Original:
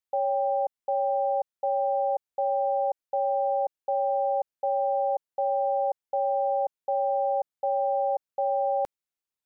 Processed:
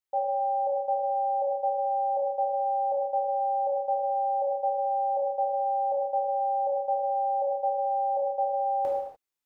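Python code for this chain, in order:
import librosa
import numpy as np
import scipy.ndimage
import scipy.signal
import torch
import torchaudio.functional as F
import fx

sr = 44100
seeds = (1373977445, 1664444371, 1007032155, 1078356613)

y = fx.rev_gated(x, sr, seeds[0], gate_ms=320, shape='falling', drr_db=-5.0)
y = y * 10.0 ** (-4.0 / 20.0)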